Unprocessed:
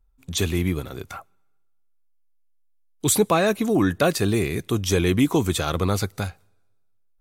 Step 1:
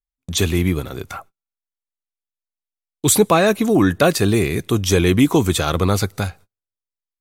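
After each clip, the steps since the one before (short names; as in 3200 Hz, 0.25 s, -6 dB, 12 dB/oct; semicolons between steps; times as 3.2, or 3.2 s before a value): gate -46 dBFS, range -34 dB; gain +5 dB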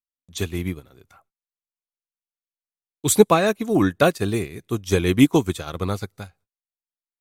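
upward expander 2.5:1, over -25 dBFS; gain +2.5 dB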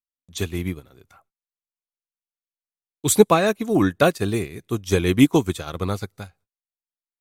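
nothing audible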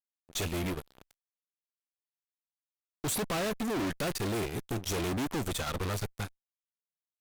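fuzz box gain 35 dB, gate -42 dBFS; tube stage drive 21 dB, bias 0.6; gain -9 dB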